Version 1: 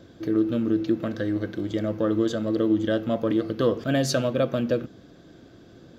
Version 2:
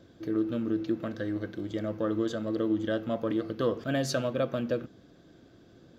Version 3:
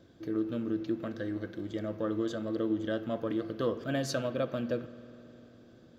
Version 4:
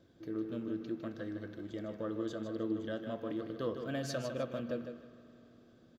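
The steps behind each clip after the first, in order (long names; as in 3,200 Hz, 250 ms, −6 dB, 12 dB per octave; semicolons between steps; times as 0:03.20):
dynamic equaliser 1,200 Hz, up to +3 dB, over −34 dBFS, Q 0.74; level −6.5 dB
spring reverb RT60 3.6 s, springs 50 ms, chirp 30 ms, DRR 15 dB; level −3 dB
repeating echo 155 ms, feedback 28%, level −8 dB; level −6 dB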